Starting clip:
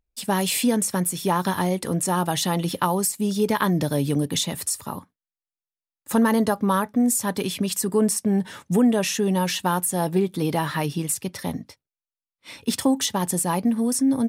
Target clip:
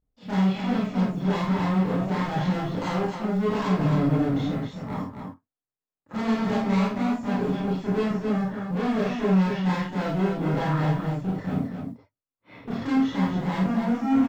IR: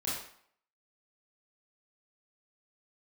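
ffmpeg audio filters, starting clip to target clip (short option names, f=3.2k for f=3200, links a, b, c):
-filter_complex "[0:a]lowpass=1.1k,aresample=16000,volume=28dB,asoftclip=hard,volume=-28dB,aresample=44100,acrusher=bits=9:mode=log:mix=0:aa=0.000001,aecho=1:1:52.48|265.3:0.501|0.501[a];[1:a]atrim=start_sample=2205,atrim=end_sample=3969[b];[a][b]afir=irnorm=-1:irlink=0"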